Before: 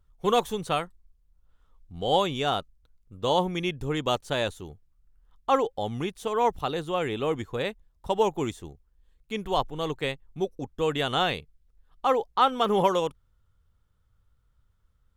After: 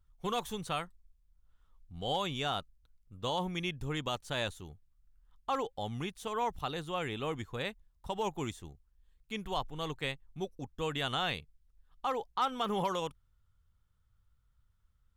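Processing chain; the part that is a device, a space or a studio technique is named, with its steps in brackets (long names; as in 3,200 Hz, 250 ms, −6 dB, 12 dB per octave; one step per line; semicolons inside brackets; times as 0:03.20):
clipper into limiter (hard clipping −12 dBFS, distortion −29 dB; brickwall limiter −16 dBFS, peak gain reduction 4 dB)
parametric band 430 Hz −6.5 dB 1.6 octaves
level −4 dB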